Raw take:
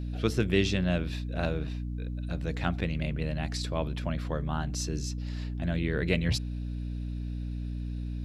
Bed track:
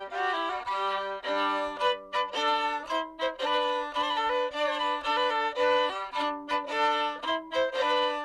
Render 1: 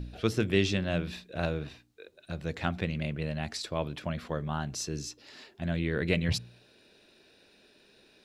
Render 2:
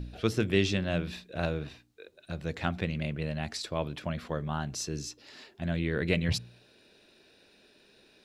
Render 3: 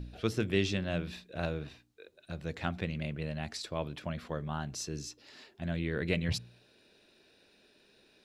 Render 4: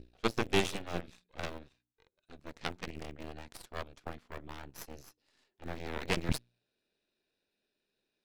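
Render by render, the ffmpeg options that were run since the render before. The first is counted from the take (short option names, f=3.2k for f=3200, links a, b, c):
-af "bandreject=f=60:t=h:w=4,bandreject=f=120:t=h:w=4,bandreject=f=180:t=h:w=4,bandreject=f=240:t=h:w=4,bandreject=f=300:t=h:w=4"
-af anull
-af "volume=-3.5dB"
-filter_complex "[0:a]aeval=exprs='0.211*(cos(1*acos(clip(val(0)/0.211,-1,1)))-cos(1*PI/2))+0.00376*(cos(5*acos(clip(val(0)/0.211,-1,1)))-cos(5*PI/2))+0.0422*(cos(6*acos(clip(val(0)/0.211,-1,1)))-cos(6*PI/2))+0.0299*(cos(7*acos(clip(val(0)/0.211,-1,1)))-cos(7*PI/2))':c=same,asplit=2[a][b];[b]aeval=exprs='val(0)*gte(abs(val(0)),0.0158)':c=same,volume=-8.5dB[c];[a][c]amix=inputs=2:normalize=0"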